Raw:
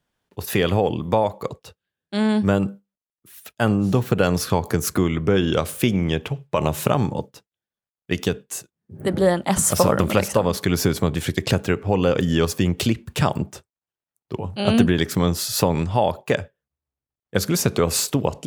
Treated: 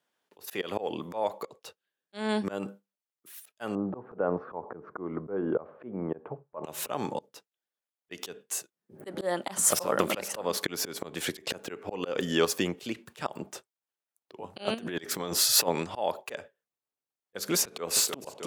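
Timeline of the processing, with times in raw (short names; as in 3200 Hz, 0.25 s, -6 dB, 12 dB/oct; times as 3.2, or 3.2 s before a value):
3.75–6.64 LPF 1200 Hz 24 dB/oct
14.74–15.68 negative-ratio compressor -22 dBFS, ratio -0.5
17.59–18.01 echo throw 0.31 s, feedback 80%, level -15.5 dB
whole clip: HPF 340 Hz 12 dB/oct; auto swell 0.207 s; gain -2 dB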